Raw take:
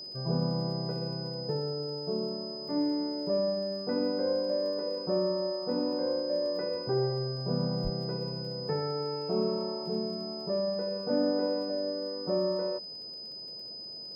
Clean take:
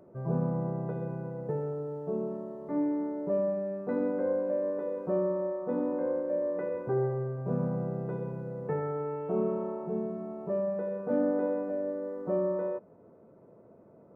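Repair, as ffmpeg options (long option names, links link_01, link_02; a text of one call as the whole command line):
ffmpeg -i in.wav -filter_complex "[0:a]adeclick=threshold=4,bandreject=frequency=5000:width=30,asplit=3[link_01][link_02][link_03];[link_01]afade=type=out:start_time=7.83:duration=0.02[link_04];[link_02]highpass=frequency=140:width=0.5412,highpass=frequency=140:width=1.3066,afade=type=in:start_time=7.83:duration=0.02,afade=type=out:start_time=7.95:duration=0.02[link_05];[link_03]afade=type=in:start_time=7.95:duration=0.02[link_06];[link_04][link_05][link_06]amix=inputs=3:normalize=0" out.wav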